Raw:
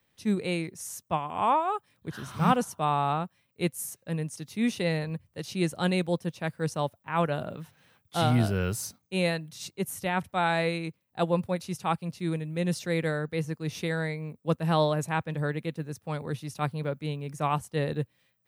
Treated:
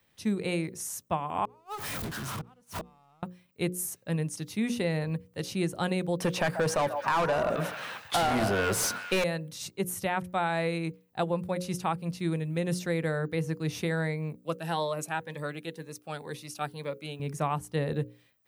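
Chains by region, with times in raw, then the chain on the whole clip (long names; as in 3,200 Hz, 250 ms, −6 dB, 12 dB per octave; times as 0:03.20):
0:01.45–0:03.23: converter with a step at zero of −30.5 dBFS + gate with flip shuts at −19 dBFS, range −40 dB + downward compressor 12 to 1, threshold −36 dBFS
0:06.20–0:09.24: mid-hump overdrive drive 29 dB, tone 3,800 Hz, clips at −11.5 dBFS + echo through a band-pass that steps 136 ms, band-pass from 770 Hz, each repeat 0.7 octaves, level −9.5 dB
0:14.44–0:17.20: high-pass filter 620 Hz 6 dB per octave + phaser whose notches keep moving one way rising 2 Hz
whole clip: mains-hum notches 60/120/180/240/300/360/420/480/540 Hz; dynamic equaliser 3,800 Hz, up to −4 dB, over −43 dBFS, Q 0.72; downward compressor 5 to 1, threshold −28 dBFS; level +3 dB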